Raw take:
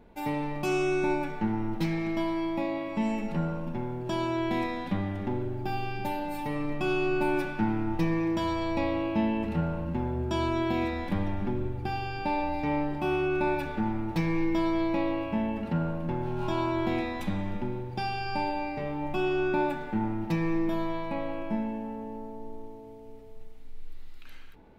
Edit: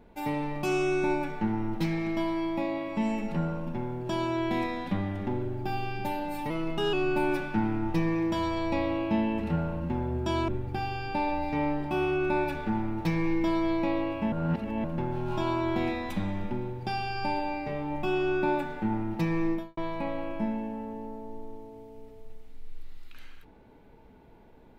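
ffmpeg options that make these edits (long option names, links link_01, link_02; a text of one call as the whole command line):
ffmpeg -i in.wav -filter_complex "[0:a]asplit=7[link_01][link_02][link_03][link_04][link_05][link_06][link_07];[link_01]atrim=end=6.504[link_08];[link_02]atrim=start=6.5:end=6.98,asetpts=PTS-STARTPTS,asetrate=48951,aresample=44100,atrim=end_sample=19070,asetpts=PTS-STARTPTS[link_09];[link_03]atrim=start=6.976:end=10.532[link_10];[link_04]atrim=start=11.588:end=15.432[link_11];[link_05]atrim=start=15.428:end=15.952,asetpts=PTS-STARTPTS,areverse[link_12];[link_06]atrim=start=15.948:end=20.88,asetpts=PTS-STARTPTS,afade=type=out:start_time=4.682:duration=0.25:curve=qua[link_13];[link_07]atrim=start=20.88,asetpts=PTS-STARTPTS,afade=type=in:duration=0.004:curve=hsin[link_14];[link_08][link_09]acrossfade=duration=0.004:curve1=hsin:curve2=hsin[link_15];[link_15][link_10]acrossfade=duration=0.004:curve1=hsin:curve2=hsin[link_16];[link_16][link_11]acrossfade=duration=0.004:curve1=hsin:curve2=hsin[link_17];[link_17][link_12]acrossfade=duration=0.004:curve1=hsin:curve2=hsin[link_18];[link_13][link_14]concat=n=2:v=0:a=1[link_19];[link_18][link_19]acrossfade=duration=0.004:curve1=hsin:curve2=hsin" out.wav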